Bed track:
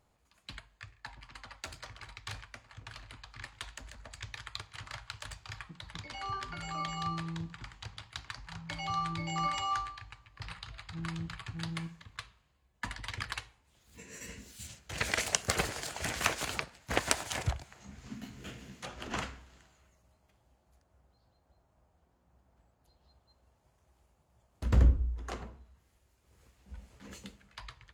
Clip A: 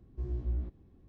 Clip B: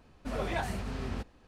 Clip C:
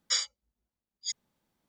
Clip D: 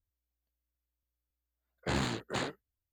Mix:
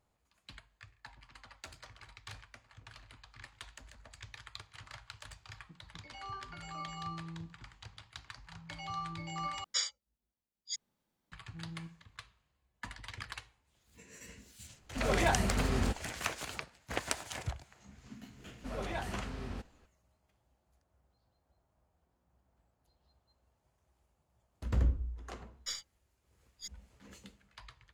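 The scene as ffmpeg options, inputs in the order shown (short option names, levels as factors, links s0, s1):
-filter_complex "[3:a]asplit=2[s0][s1];[2:a]asplit=2[s2][s3];[0:a]volume=0.501[s4];[s2]dynaudnorm=f=120:g=5:m=5.96[s5];[s1]aeval=exprs='if(lt(val(0),0),0.708*val(0),val(0))':c=same[s6];[s4]asplit=2[s7][s8];[s7]atrim=end=9.644[s9];[s0]atrim=end=1.68,asetpts=PTS-STARTPTS,volume=0.562[s10];[s8]atrim=start=11.316[s11];[s5]atrim=end=1.47,asetpts=PTS-STARTPTS,volume=0.299,afade=t=in:d=0.004:c=hsin,afade=t=out:st=1.466:d=0.004:c=hsin,adelay=14700[s12];[s3]atrim=end=1.47,asetpts=PTS-STARTPTS,volume=0.531,afade=t=in:d=0.004:c=hsin,afade=t=out:st=1.466:d=0.004:c=hsin,adelay=18390[s13];[s6]atrim=end=1.68,asetpts=PTS-STARTPTS,volume=0.299,afade=t=in:d=0.004:c=hsin,afade=t=out:st=1.676:d=0.004:c=hsin,adelay=25560[s14];[s9][s10]acrossfade=d=0.004:c1=hsin:c2=hsin[s15];[s15][s11]acrossfade=d=0.004:c1=hsin:c2=hsin[s16];[s16][s12][s13][s14]amix=inputs=4:normalize=0"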